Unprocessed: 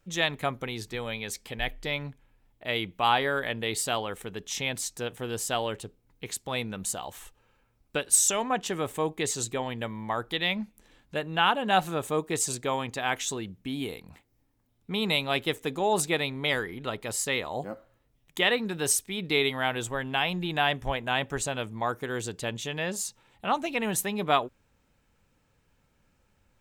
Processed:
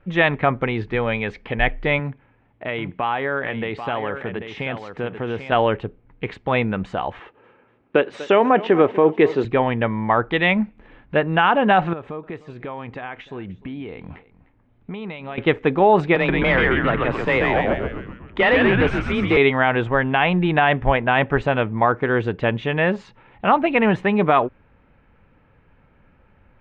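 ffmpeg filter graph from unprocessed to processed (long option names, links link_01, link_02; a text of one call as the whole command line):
ffmpeg -i in.wav -filter_complex "[0:a]asettb=1/sr,asplit=3[link_01][link_02][link_03];[link_01]atrim=end=1.994[link_04];[link_02]atrim=start=1.99:end=5.52,asetpts=PTS-STARTPTS,afade=type=in:duration=0.004:curve=qsin,afade=type=out:start_time=3.526:duration=0.004:curve=qsin,highpass=81,acompressor=threshold=-36dB:ratio=2.5:attack=3.2:release=140:knee=1:detection=peak,aecho=1:1:790:0.355,atrim=end_sample=155673[link_05];[link_03]atrim=start=5.516[link_06];[link_04][link_05]acrossfade=duration=0.004:curve1=hsin:curve2=qsin[link_07];[link_07][link_06]acrossfade=duration=0.004:curve1=qsin:curve2=hsin,asettb=1/sr,asplit=3[link_08][link_09][link_10];[link_08]atrim=end=7.194[link_11];[link_09]atrim=start=7.19:end=9.45,asetpts=PTS-STARTPTS,afade=type=in:duration=0.004:curve=qsin,afade=type=out:start_time=2.256:duration=0.004:curve=qsin,highpass=170,lowpass=6200,equalizer=frequency=390:width=1.4:gain=7,aecho=1:1:244|488|732|976:0.112|0.0572|0.0292|0.0149,atrim=end_sample=99666[link_12];[link_10]atrim=start=9.446[link_13];[link_11][link_12]acrossfade=duration=0.004:curve1=hsin:curve2=qsin[link_14];[link_14][link_13]acrossfade=duration=0.004:curve1=qsin:curve2=hsin,asettb=1/sr,asplit=3[link_15][link_16][link_17];[link_15]atrim=end=11.934[link_18];[link_16]atrim=start=11.93:end=15.38,asetpts=PTS-STARTPTS,afade=type=in:duration=0.004:curve=qsin,afade=type=out:start_time=3.446:duration=0.004:curve=qsin,acompressor=threshold=-42dB:ratio=5:attack=3.2:release=140:knee=1:detection=peak,aecho=1:1:303:0.112,atrim=end_sample=152145[link_19];[link_17]atrim=start=15.376[link_20];[link_18][link_19]acrossfade=duration=0.004:curve1=hsin:curve2=qsin[link_21];[link_21][link_20]acrossfade=duration=0.004:curve1=qsin:curve2=hsin,asettb=1/sr,asplit=3[link_22][link_23][link_24];[link_22]atrim=end=16.154[link_25];[link_23]atrim=start=16.15:end=19.37,asetpts=PTS-STARTPTS,afade=type=in:duration=0.004:curve=qsin,afade=type=out:start_time=3.216:duration=0.004:curve=qsin,afreqshift=21,asplit=8[link_26][link_27][link_28][link_29][link_30][link_31][link_32][link_33];[link_27]adelay=132,afreqshift=-120,volume=-4dB[link_34];[link_28]adelay=264,afreqshift=-240,volume=-9.2dB[link_35];[link_29]adelay=396,afreqshift=-360,volume=-14.4dB[link_36];[link_30]adelay=528,afreqshift=-480,volume=-19.6dB[link_37];[link_31]adelay=660,afreqshift=-600,volume=-24.8dB[link_38];[link_32]adelay=792,afreqshift=-720,volume=-30dB[link_39];[link_33]adelay=924,afreqshift=-840,volume=-35.2dB[link_40];[link_26][link_34][link_35][link_36][link_37][link_38][link_39][link_40]amix=inputs=8:normalize=0,atrim=end_sample=142002,asoftclip=type=hard:threshold=-24dB[link_41];[link_24]atrim=start=19.366[link_42];[link_25][link_41]acrossfade=duration=0.004:curve1=hsin:curve2=qsin[link_43];[link_43][link_42]acrossfade=duration=0.004:curve1=qsin:curve2=hsin,lowpass=frequency=2400:width=0.5412,lowpass=frequency=2400:width=1.3066,alimiter=level_in=17dB:limit=-1dB:release=50:level=0:latency=1,volume=-4dB" out.wav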